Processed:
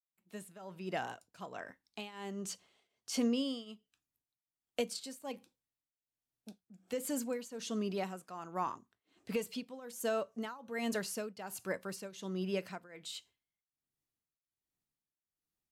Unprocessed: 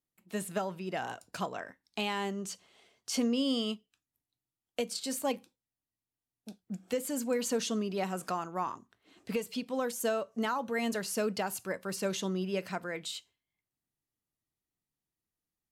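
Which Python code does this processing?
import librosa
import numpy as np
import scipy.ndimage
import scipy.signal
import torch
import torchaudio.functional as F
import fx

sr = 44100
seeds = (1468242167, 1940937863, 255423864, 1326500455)

y = fx.fade_in_head(x, sr, length_s=0.67)
y = fx.tremolo_shape(y, sr, shape='triangle', hz=1.3, depth_pct=90)
y = y * librosa.db_to_amplitude(-1.0)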